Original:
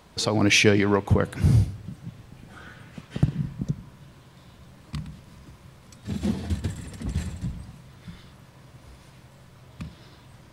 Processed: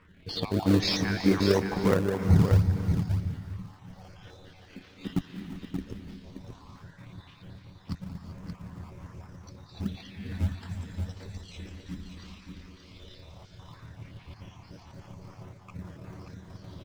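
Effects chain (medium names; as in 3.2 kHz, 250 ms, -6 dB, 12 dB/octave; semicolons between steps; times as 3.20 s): random holes in the spectrogram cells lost 32%; low-pass 5.6 kHz 24 dB/octave; bass shelf 350 Hz -4 dB; reverse; upward compressor, threshold -39 dBFS; reverse; phase shifter stages 4, 0.23 Hz, lowest notch 110–4200 Hz; granular stretch 1.6×, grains 57 ms; in parallel at -8.5 dB: decimation with a swept rate 41×, swing 100% 2.9 Hz; on the sum: delay 578 ms -6.5 dB; gated-style reverb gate 410 ms rising, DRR 10.5 dB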